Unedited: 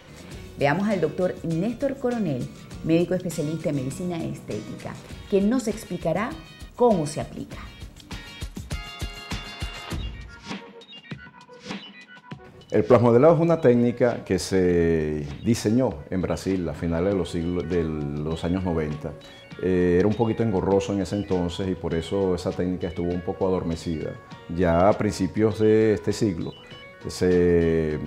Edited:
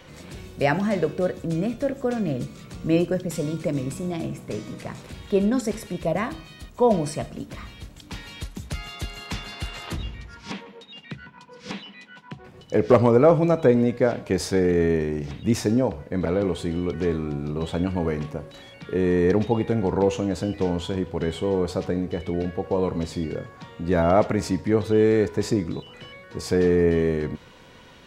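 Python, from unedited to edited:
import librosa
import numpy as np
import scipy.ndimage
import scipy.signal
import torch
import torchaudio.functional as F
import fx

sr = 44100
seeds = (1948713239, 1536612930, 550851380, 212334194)

y = fx.edit(x, sr, fx.cut(start_s=16.26, length_s=0.7), tone=tone)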